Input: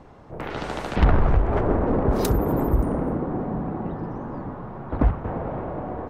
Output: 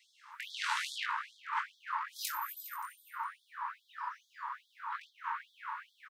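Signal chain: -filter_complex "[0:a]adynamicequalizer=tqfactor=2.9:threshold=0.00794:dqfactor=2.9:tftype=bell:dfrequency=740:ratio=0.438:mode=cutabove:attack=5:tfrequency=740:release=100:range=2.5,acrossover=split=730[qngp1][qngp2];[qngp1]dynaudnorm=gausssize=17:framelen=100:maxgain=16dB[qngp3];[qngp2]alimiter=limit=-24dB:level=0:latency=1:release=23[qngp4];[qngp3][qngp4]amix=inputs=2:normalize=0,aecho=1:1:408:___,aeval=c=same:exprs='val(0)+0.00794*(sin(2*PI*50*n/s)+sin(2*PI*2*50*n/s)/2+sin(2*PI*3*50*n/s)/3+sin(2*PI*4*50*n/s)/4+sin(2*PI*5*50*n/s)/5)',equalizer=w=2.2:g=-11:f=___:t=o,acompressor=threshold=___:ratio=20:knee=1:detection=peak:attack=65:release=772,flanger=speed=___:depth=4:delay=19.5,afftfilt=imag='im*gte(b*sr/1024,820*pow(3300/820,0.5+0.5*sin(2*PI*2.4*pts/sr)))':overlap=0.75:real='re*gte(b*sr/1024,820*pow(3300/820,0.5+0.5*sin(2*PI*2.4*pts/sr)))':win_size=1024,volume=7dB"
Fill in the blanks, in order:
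0.126, 110, -18dB, 0.81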